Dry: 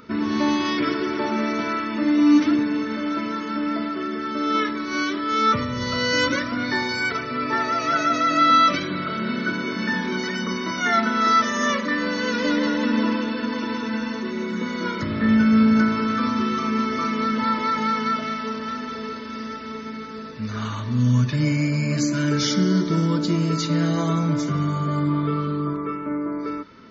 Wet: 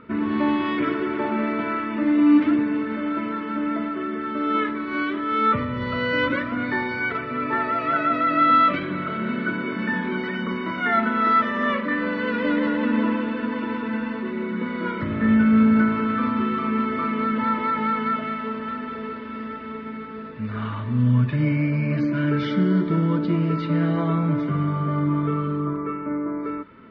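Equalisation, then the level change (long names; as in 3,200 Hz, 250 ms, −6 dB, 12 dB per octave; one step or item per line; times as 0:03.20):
low-pass filter 3,000 Hz 24 dB per octave
high-frequency loss of the air 110 metres
0.0 dB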